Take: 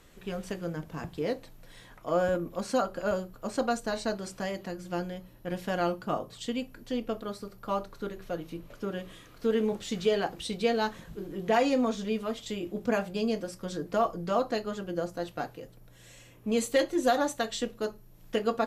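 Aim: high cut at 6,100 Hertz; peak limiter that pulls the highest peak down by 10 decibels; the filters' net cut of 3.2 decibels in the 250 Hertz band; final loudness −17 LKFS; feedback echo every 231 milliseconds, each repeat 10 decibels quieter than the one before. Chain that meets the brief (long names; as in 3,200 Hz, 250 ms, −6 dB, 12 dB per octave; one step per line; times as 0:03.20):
low-pass filter 6,100 Hz
parametric band 250 Hz −4 dB
brickwall limiter −23 dBFS
repeating echo 231 ms, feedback 32%, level −10 dB
level +18 dB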